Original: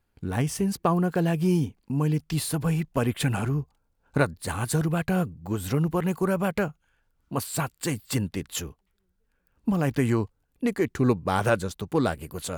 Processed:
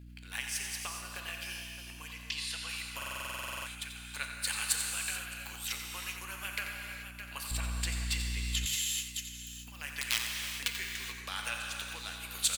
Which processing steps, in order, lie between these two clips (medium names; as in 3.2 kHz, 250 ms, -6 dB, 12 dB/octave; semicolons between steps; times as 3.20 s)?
2.13–2.69 s: low-pass 6.3 kHz 12 dB/octave; 10.01–10.68 s: integer overflow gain 16 dB; transient shaper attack +8 dB, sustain -4 dB; delay 612 ms -22 dB; compression 4:1, threshold -34 dBFS, peak gain reduction 18.5 dB; resonant high-pass 2.6 kHz, resonance Q 1.5; gated-style reverb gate 460 ms flat, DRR 1.5 dB; hum 60 Hz, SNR 13 dB; 7.51–8.66 s: tilt EQ -4 dB/octave; delay 88 ms -10 dB; buffer glitch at 2.97 s, samples 2048, times 14; trim +8.5 dB